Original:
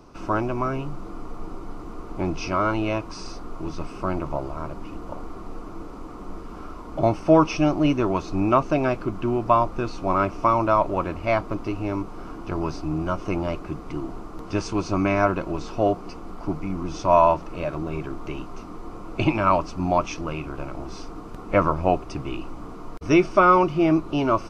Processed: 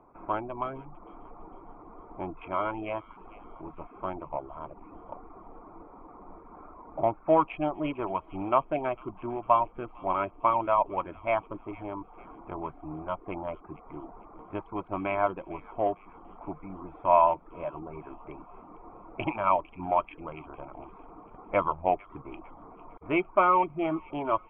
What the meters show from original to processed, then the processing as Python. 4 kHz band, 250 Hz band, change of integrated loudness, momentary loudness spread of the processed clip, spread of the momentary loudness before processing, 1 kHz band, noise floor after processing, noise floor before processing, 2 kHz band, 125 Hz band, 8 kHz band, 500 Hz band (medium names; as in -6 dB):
under -10 dB, -12.0 dB, -6.0 dB, 22 LU, 20 LU, -4.0 dB, -53 dBFS, -38 dBFS, -7.5 dB, -15.5 dB, no reading, -6.5 dB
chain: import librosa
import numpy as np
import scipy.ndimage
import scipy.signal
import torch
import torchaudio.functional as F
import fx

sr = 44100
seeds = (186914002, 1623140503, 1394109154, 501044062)

y = fx.wiener(x, sr, points=15)
y = fx.dereverb_blind(y, sr, rt60_s=0.53)
y = scipy.signal.sosfilt(scipy.signal.cheby1(6, 9, 3300.0, 'lowpass', fs=sr, output='sos'), y)
y = fx.low_shelf(y, sr, hz=280.0, db=-6.5)
y = fx.echo_wet_highpass(y, sr, ms=453, feedback_pct=41, hz=2200.0, wet_db=-15.0)